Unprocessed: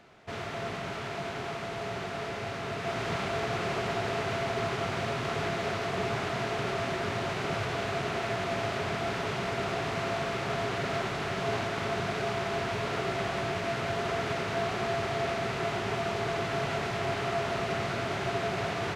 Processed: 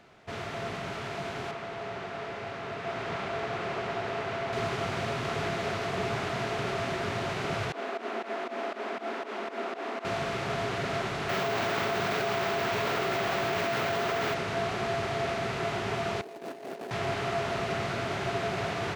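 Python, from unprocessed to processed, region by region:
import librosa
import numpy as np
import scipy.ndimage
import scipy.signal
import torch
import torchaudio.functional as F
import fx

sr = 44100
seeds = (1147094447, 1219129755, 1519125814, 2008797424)

y = fx.chain(x, sr, fx.lowpass(hz=2700.0, slope=6),
    fx.low_shelf(hz=240.0, db=-7.0), at=(1.51, 4.53))
y = fx.chain(y, sr, fx.cheby1_highpass(hz=220.0, order=6),
    fx.peak_eq(hz=10000.0, db=-10.0, octaves=2.8),
    fx.volume_shaper(bpm=119, per_beat=2, depth_db=-16, release_ms=128.0, shape='fast start'), at=(7.72, 10.05))
y = fx.chain(y, sr, fx.low_shelf(hz=140.0, db=-11.5),
    fx.resample_bad(factor=2, down='none', up='hold'),
    fx.env_flatten(amount_pct=100), at=(11.29, 14.34))
y = fx.chain(y, sr, fx.median_filter(points=41),
    fx.highpass(hz=260.0, slope=24),
    fx.over_compress(threshold_db=-40.0, ratio=-0.5), at=(16.21, 16.91))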